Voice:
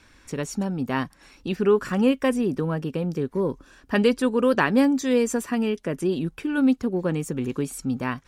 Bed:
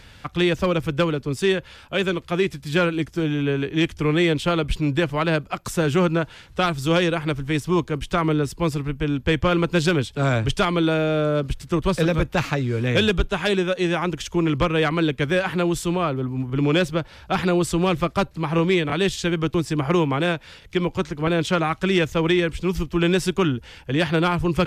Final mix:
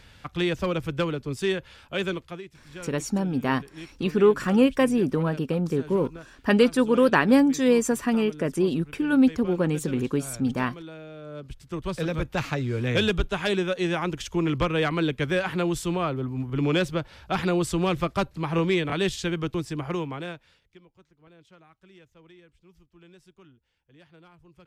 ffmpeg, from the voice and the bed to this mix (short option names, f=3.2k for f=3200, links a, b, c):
-filter_complex "[0:a]adelay=2550,volume=1dB[a];[1:a]volume=11.5dB,afade=t=out:st=2.13:d=0.29:silence=0.16788,afade=t=in:st=11.21:d=1.48:silence=0.141254,afade=t=out:st=19.07:d=1.74:silence=0.0334965[b];[a][b]amix=inputs=2:normalize=0"